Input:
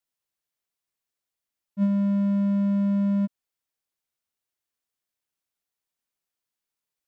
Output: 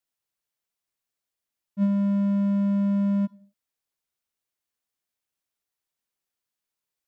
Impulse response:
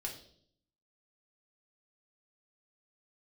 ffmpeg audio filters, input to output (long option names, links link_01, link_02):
-filter_complex "[0:a]asplit=2[link_01][link_02];[1:a]atrim=start_sample=2205,afade=type=out:start_time=0.26:duration=0.01,atrim=end_sample=11907,adelay=52[link_03];[link_02][link_03]afir=irnorm=-1:irlink=0,volume=-20dB[link_04];[link_01][link_04]amix=inputs=2:normalize=0"